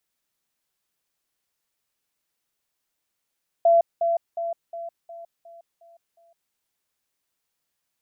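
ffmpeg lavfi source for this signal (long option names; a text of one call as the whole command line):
ffmpeg -f lavfi -i "aevalsrc='pow(10,(-13-6*floor(t/0.36))/20)*sin(2*PI*676*t)*clip(min(mod(t,0.36),0.16-mod(t,0.36))/0.005,0,1)':duration=2.88:sample_rate=44100" out.wav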